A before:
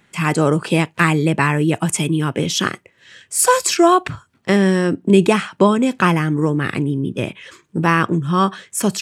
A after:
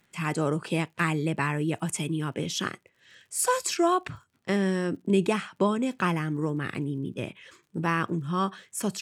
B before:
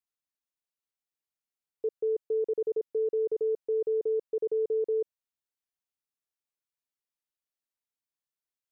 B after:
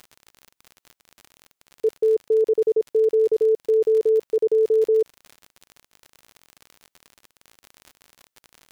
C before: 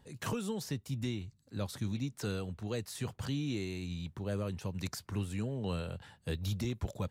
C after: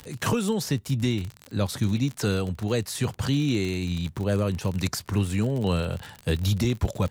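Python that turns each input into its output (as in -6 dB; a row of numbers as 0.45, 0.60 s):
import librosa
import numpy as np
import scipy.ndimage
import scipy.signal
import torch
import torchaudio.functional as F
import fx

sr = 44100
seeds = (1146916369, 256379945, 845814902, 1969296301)

y = fx.dmg_crackle(x, sr, seeds[0], per_s=56.0, level_db=-40.0)
y = librosa.util.normalize(y) * 10.0 ** (-12 / 20.0)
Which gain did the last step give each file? -11.0, +10.0, +11.5 dB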